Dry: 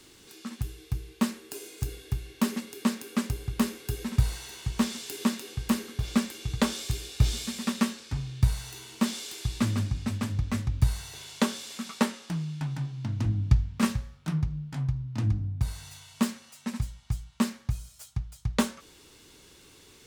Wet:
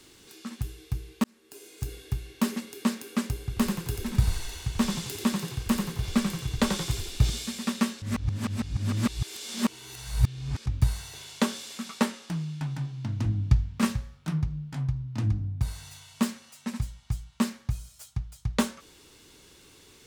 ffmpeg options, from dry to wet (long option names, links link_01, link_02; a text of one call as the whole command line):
ffmpeg -i in.wav -filter_complex "[0:a]asettb=1/sr,asplit=3[link_01][link_02][link_03];[link_01]atrim=end=3.414[link_04];[link_02]atrim=start=3.41:end=7.3,asetpts=PTS-STARTPTS,afade=type=in:duration=0.004:curve=qsin,afade=type=out:start_time=3.886:duration=0.004:curve=qsin,asplit=7[link_05][link_06][link_07][link_08][link_09][link_10][link_11];[link_06]adelay=88,afreqshift=-33,volume=-5.5dB[link_12];[link_07]adelay=176,afreqshift=-66,volume=-11.3dB[link_13];[link_08]adelay=264,afreqshift=-99,volume=-17.2dB[link_14];[link_09]adelay=352,afreqshift=-132,volume=-23dB[link_15];[link_10]adelay=440,afreqshift=-165,volume=-28.9dB[link_16];[link_11]adelay=528,afreqshift=-198,volume=-34.7dB[link_17];[link_05][link_12][link_13][link_14][link_15][link_16][link_17]amix=inputs=7:normalize=0,atrim=end_sample=171549[link_18];[link_03]atrim=start=7.296[link_19];[link_04][link_18]acrossfade=duration=0.004:curve1=hsin:curve2=qsin[link_20];[link_20][link_19]acrossfade=duration=0.004:curve1=qsin:curve2=hsin,asplit=4[link_21][link_22][link_23][link_24];[link_21]atrim=end=1.24,asetpts=PTS-STARTPTS,afade=type=out:start_time=1.236:duration=0.004:curve=hsin[link_25];[link_22]atrim=start=1.24:end=8.022,asetpts=PTS-STARTPTS,afade=type=in:duration=0.74[link_26];[link_23]atrim=start=8.018:end=10.662,asetpts=PTS-STARTPTS,areverse[link_27];[link_24]atrim=start=10.658[link_28];[link_25][link_26]concat=n=2:v=0:a=1[link_29];[link_29][link_27]acrossfade=duration=0.004:curve1=hsin:curve2=hsin[link_30];[link_30][link_28]acrossfade=duration=0.004:curve1=hsin:curve2=hsin" out.wav